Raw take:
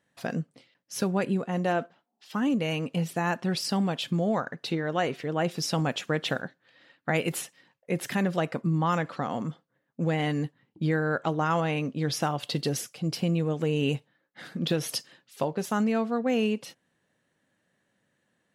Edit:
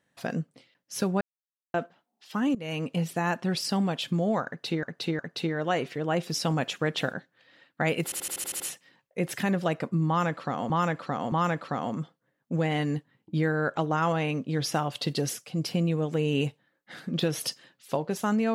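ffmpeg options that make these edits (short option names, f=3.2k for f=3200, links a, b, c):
-filter_complex "[0:a]asplit=15[a][b][c][d][e][f][g][h][i][j][k][l][m][n][o];[a]atrim=end=1.21,asetpts=PTS-STARTPTS,afade=t=out:st=1.206:d=0.004:c=hsin[p];[b]atrim=start=1.21:end=1.74,asetpts=PTS-STARTPTS,volume=0[q];[c]atrim=start=1.74:end=2.55,asetpts=PTS-STARTPTS,afade=t=in:d=0.004:c=hsin,afade=t=out:st=0.806:d=0.004:c=hsin:silence=0.125893[r];[d]atrim=start=2.55:end=4.832,asetpts=PTS-STARTPTS,afade=t=in:d=0.27:silence=0.125893[s];[e]atrim=start=4.468:end=4.832[t];[f]atrim=start=4.468:end=7.402[u];[g]atrim=start=7.318:end=7.402[v];[h]atrim=start=7.318:end=7.402[w];[i]atrim=start=7.318:end=7.402[x];[j]atrim=start=7.318:end=7.402[y];[k]atrim=start=7.318:end=7.402[z];[l]atrim=start=7.318:end=7.402[aa];[m]atrim=start=7.318:end=9.422[ab];[n]atrim=start=8.798:end=9.422[ac];[o]atrim=start=8.798[ad];[p][q][r][s]concat=n=4:v=0:a=1[ae];[ae][t]acrossfade=d=0.004:c1=hsin:c2=hsin[af];[af][u]acrossfade=d=0.004:c1=hsin:c2=hsin[ag];[ag][v]acrossfade=d=0.004:c1=hsin:c2=hsin[ah];[ah][w]acrossfade=d=0.004:c1=hsin:c2=hsin[ai];[ai][x]acrossfade=d=0.004:c1=hsin:c2=hsin[aj];[aj][y]acrossfade=d=0.004:c1=hsin:c2=hsin[ak];[ak][z]acrossfade=d=0.004:c1=hsin:c2=hsin[al];[al][aa]acrossfade=d=0.004:c1=hsin:c2=hsin[am];[am][ab]acrossfade=d=0.004:c1=hsin:c2=hsin[an];[an][ac]acrossfade=d=0.004:c1=hsin:c2=hsin[ao];[ao][ad]acrossfade=d=0.004:c1=hsin:c2=hsin"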